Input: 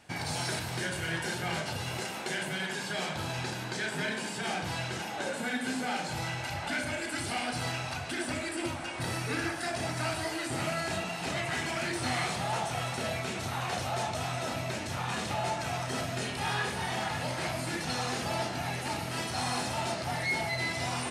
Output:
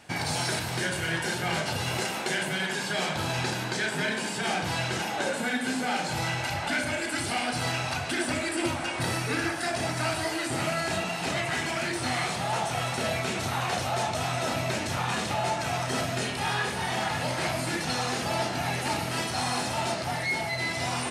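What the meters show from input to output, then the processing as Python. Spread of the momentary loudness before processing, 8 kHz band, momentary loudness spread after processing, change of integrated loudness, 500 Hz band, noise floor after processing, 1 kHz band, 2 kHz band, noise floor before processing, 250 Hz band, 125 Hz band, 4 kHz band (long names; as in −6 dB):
3 LU, +4.5 dB, 1 LU, +4.5 dB, +4.5 dB, −33 dBFS, +4.5 dB, +4.5 dB, −38 dBFS, +4.0 dB, +3.5 dB, +4.5 dB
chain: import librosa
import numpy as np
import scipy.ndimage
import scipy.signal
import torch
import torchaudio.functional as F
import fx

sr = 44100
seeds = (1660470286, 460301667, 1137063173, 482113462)

y = fx.low_shelf(x, sr, hz=76.0, db=-5.0)
y = fx.rider(y, sr, range_db=10, speed_s=0.5)
y = F.gain(torch.from_numpy(y), 4.5).numpy()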